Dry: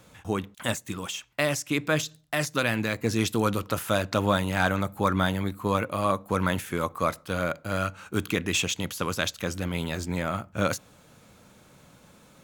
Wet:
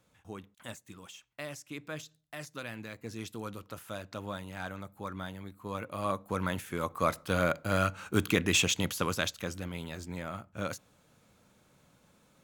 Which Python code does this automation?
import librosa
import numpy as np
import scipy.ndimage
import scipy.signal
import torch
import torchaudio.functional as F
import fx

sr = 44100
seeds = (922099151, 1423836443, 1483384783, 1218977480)

y = fx.gain(x, sr, db=fx.line((5.55, -15.5), (6.08, -7.0), (6.69, -7.0), (7.25, 0.0), (8.87, 0.0), (9.8, -10.0)))